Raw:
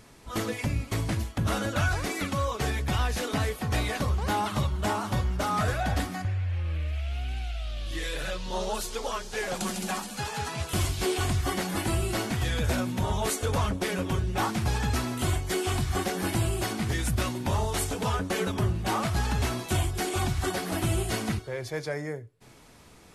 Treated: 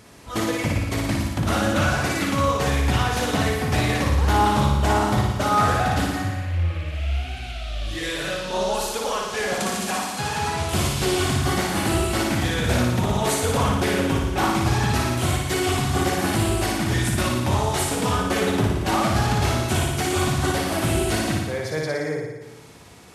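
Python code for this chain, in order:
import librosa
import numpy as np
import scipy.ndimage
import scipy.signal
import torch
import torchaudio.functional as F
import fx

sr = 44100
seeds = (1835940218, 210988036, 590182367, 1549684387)

y = scipy.signal.sosfilt(scipy.signal.butter(2, 68.0, 'highpass', fs=sr, output='sos'), x)
y = fx.room_flutter(y, sr, wall_m=9.9, rt60_s=1.1)
y = fx.doppler_dist(y, sr, depth_ms=0.15)
y = y * 10.0 ** (4.5 / 20.0)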